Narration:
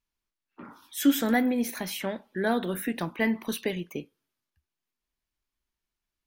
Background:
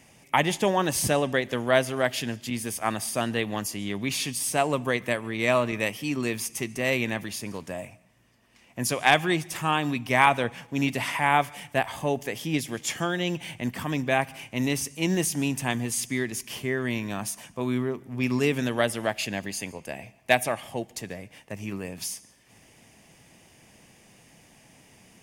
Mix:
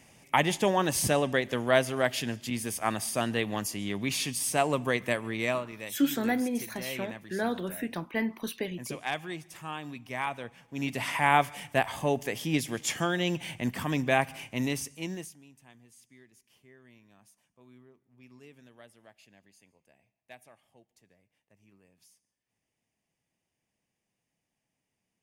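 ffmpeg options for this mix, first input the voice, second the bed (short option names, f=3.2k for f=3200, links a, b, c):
-filter_complex "[0:a]adelay=4950,volume=-4dB[a];[1:a]volume=10.5dB,afade=t=out:st=5.33:d=0.32:silence=0.266073,afade=t=in:st=10.62:d=0.62:silence=0.237137,afade=t=out:st=14.36:d=1.02:silence=0.0398107[b];[a][b]amix=inputs=2:normalize=0"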